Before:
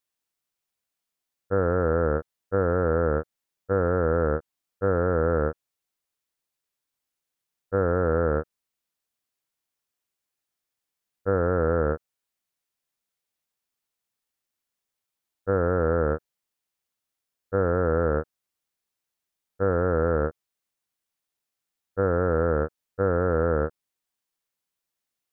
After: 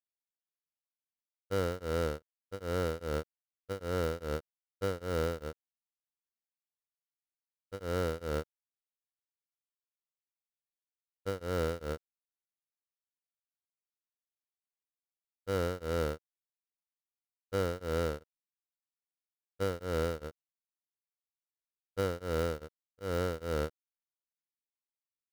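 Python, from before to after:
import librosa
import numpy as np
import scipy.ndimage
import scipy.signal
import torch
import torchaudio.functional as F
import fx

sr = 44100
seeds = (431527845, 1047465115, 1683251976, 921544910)

y = fx.dead_time(x, sr, dead_ms=0.15)
y = y * np.abs(np.cos(np.pi * 2.5 * np.arange(len(y)) / sr))
y = y * 10.0 ** (-7.5 / 20.0)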